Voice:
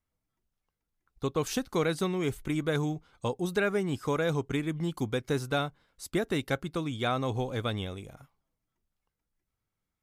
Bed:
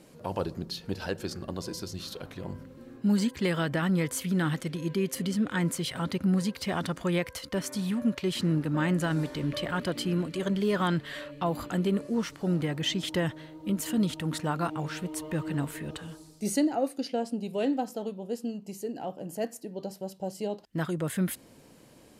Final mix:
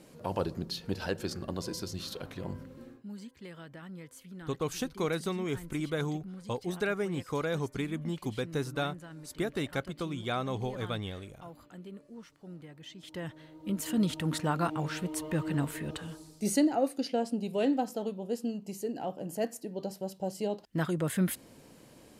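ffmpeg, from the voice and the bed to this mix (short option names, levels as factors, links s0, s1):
-filter_complex "[0:a]adelay=3250,volume=0.668[s0];[1:a]volume=8.41,afade=t=out:st=2.84:d=0.2:silence=0.11885,afade=t=in:st=12.97:d=1.24:silence=0.112202[s1];[s0][s1]amix=inputs=2:normalize=0"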